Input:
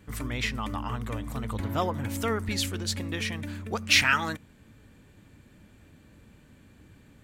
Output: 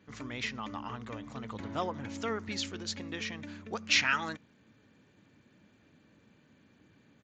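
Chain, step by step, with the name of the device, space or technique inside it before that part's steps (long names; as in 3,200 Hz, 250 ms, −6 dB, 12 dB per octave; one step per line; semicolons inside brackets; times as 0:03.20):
Bluetooth headset (high-pass filter 150 Hz 12 dB per octave; downsampling to 16,000 Hz; level −5.5 dB; SBC 64 kbit/s 16,000 Hz)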